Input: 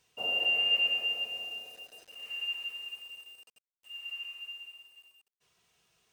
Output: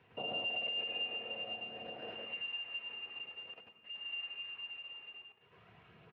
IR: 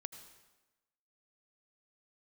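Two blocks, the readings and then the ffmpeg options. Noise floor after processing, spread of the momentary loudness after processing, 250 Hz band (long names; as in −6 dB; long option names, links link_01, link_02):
−66 dBFS, 13 LU, can't be measured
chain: -filter_complex "[0:a]asplit=2[link_01][link_02];[1:a]atrim=start_sample=2205,highshelf=frequency=7000:gain=-9,adelay=106[link_03];[link_02][link_03]afir=irnorm=-1:irlink=0,volume=9.5dB[link_04];[link_01][link_04]amix=inputs=2:normalize=0,volume=19.5dB,asoftclip=hard,volume=-19.5dB,acompressor=threshold=-48dB:ratio=2.5,lowpass=frequency=2500:width=0.5412,lowpass=frequency=2500:width=1.3066,lowshelf=frequency=410:gain=5,asplit=2[link_05][link_06];[link_06]adelay=116,lowpass=frequency=1300:poles=1,volume=-22dB,asplit=2[link_07][link_08];[link_08]adelay=116,lowpass=frequency=1300:poles=1,volume=0.17[link_09];[link_05][link_07][link_09]amix=inputs=3:normalize=0,aphaser=in_gain=1:out_gain=1:delay=2.5:decay=0.24:speed=0.48:type=sinusoidal,volume=6.5dB" -ar 32000 -c:a libspeex -b:a 36k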